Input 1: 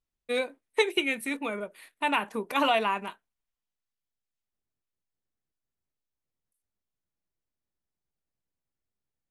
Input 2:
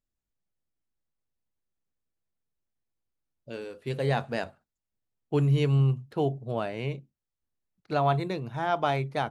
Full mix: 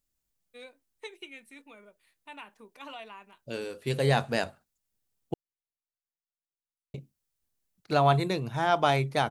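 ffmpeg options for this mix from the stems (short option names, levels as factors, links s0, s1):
-filter_complex "[0:a]lowpass=7000,adelay=250,volume=0.1[s0];[1:a]volume=1.26,asplit=3[s1][s2][s3];[s1]atrim=end=5.34,asetpts=PTS-STARTPTS,afade=t=out:st=5.336:d=0.004:c=hsin[s4];[s2]atrim=start=5.34:end=6.94,asetpts=PTS-STARTPTS,volume=0[s5];[s3]atrim=start=6.94,asetpts=PTS-STARTPTS,afade=t=in:d=0.004:c=hsin[s6];[s4][s5][s6]concat=n=3:v=0:a=1[s7];[s0][s7]amix=inputs=2:normalize=0,highshelf=f=4400:g=10.5"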